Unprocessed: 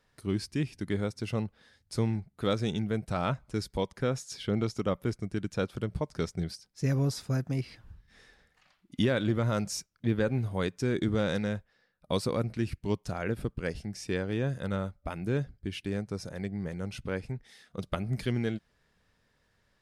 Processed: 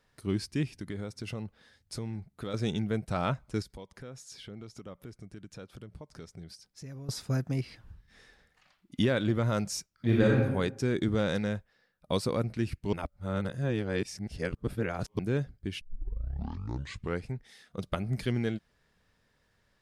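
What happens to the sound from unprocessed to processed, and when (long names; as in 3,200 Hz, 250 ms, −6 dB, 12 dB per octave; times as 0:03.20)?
0:00.77–0:02.54: downward compressor 5 to 1, threshold −33 dBFS
0:03.62–0:07.09: downward compressor 3 to 1, threshold −46 dBFS
0:09.94–0:10.36: thrown reverb, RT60 0.94 s, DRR −4 dB
0:12.93–0:15.19: reverse
0:15.81: tape start 1.45 s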